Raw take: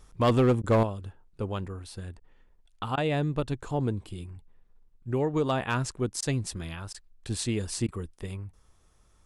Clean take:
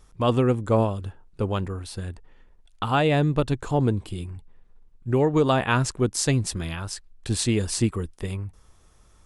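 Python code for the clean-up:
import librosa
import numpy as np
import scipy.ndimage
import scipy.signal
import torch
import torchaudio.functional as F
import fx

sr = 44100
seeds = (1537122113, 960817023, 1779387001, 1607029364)

y = fx.fix_declip(x, sr, threshold_db=-16.5)
y = fx.fix_interpolate(y, sr, at_s=(0.62, 2.2, 2.96, 6.21, 6.93, 7.87), length_ms=13.0)
y = fx.gain(y, sr, db=fx.steps((0.0, 0.0), (0.83, 6.5)))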